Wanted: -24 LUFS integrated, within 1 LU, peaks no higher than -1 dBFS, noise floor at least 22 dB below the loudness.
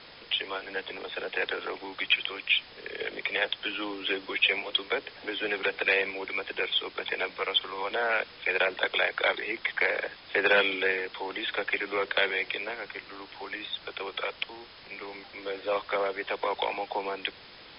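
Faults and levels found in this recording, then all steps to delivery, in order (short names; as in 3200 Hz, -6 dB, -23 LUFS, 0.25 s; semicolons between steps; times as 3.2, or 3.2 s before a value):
noise floor -50 dBFS; noise floor target -51 dBFS; loudness -29.0 LUFS; peak -9.5 dBFS; loudness target -24.0 LUFS
-> noise print and reduce 6 dB; gain +5 dB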